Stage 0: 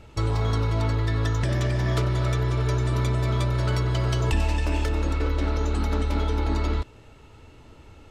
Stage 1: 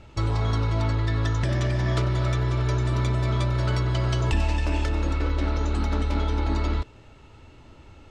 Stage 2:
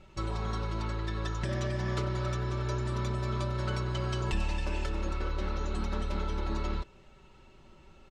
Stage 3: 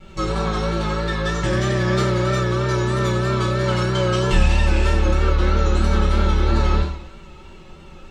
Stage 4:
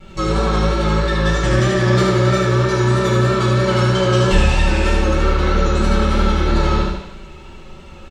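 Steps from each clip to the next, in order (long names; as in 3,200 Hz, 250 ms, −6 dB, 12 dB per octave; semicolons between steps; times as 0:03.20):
low-pass filter 7,600 Hz 12 dB per octave; notch filter 450 Hz, Q 15
comb filter 5.3 ms, depth 78%; level −8 dB
coupled-rooms reverb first 0.59 s, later 1.7 s, DRR −8.5 dB; pitch vibrato 3.1 Hz 48 cents; level +5 dB
repeating echo 74 ms, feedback 48%, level −4.5 dB; level +2.5 dB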